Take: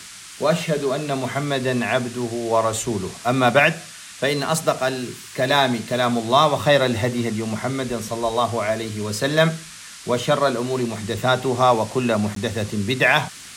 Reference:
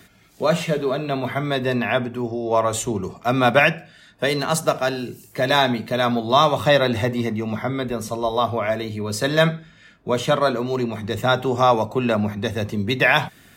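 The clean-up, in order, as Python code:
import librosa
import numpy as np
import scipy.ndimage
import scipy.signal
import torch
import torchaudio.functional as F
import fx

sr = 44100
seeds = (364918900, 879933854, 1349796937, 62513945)

y = fx.fix_interpolate(x, sr, at_s=(12.35,), length_ms=13.0)
y = fx.noise_reduce(y, sr, print_start_s=9.57, print_end_s=10.07, reduce_db=9.0)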